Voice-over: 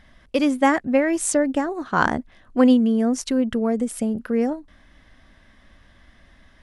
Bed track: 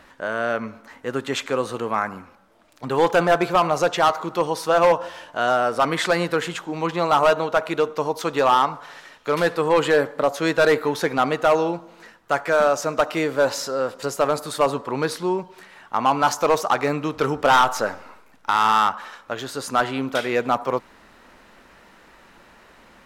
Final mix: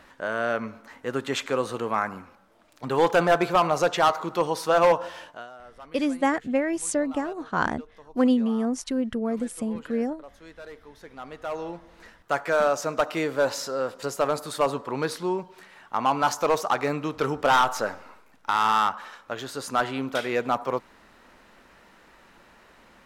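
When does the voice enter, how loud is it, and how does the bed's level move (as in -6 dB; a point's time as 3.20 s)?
5.60 s, -5.5 dB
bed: 5.27 s -2.5 dB
5.50 s -26 dB
10.91 s -26 dB
12.07 s -4 dB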